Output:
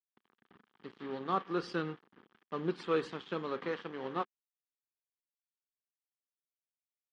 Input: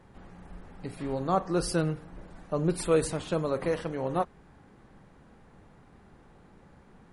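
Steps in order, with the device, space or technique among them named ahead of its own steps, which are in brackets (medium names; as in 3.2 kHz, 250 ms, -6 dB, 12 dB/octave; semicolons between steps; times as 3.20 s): blown loudspeaker (crossover distortion -42 dBFS; cabinet simulation 220–4800 Hz, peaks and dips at 220 Hz +5 dB, 390 Hz +4 dB, 620 Hz -10 dB, 1.2 kHz +6 dB, 1.7 kHz +5 dB, 3.2 kHz +8 dB); trim -6 dB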